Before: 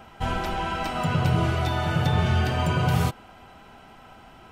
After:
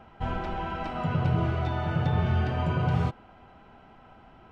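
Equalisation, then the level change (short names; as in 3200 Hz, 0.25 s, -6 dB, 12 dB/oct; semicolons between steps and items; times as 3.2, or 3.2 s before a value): tape spacing loss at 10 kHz 25 dB; -2.5 dB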